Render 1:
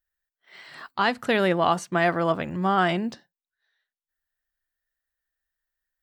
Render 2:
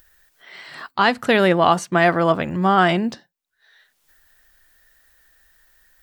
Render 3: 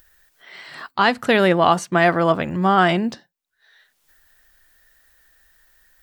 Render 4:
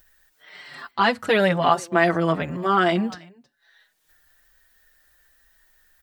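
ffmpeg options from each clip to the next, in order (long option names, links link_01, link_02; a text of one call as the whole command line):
ffmpeg -i in.wav -af "acompressor=mode=upward:threshold=-44dB:ratio=2.5,volume=6dB" out.wav
ffmpeg -i in.wav -af anull out.wav
ffmpeg -i in.wav -filter_complex "[0:a]aecho=1:1:319:0.0631,asplit=2[link_01][link_02];[link_02]adelay=5.4,afreqshift=-1.1[link_03];[link_01][link_03]amix=inputs=2:normalize=1" out.wav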